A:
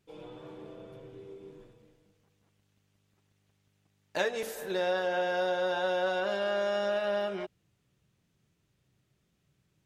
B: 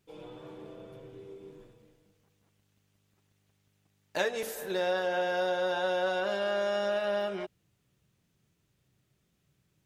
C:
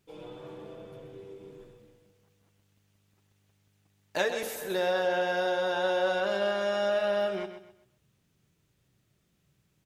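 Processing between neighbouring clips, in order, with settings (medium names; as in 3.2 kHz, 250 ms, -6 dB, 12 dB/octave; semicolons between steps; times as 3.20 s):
treble shelf 10 kHz +6 dB
feedback delay 129 ms, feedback 32%, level -10 dB; trim +1.5 dB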